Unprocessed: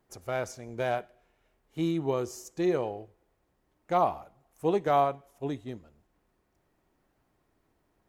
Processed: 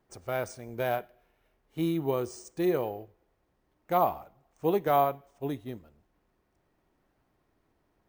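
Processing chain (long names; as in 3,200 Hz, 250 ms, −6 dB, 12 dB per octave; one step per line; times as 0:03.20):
bad sample-rate conversion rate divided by 3×, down filtered, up hold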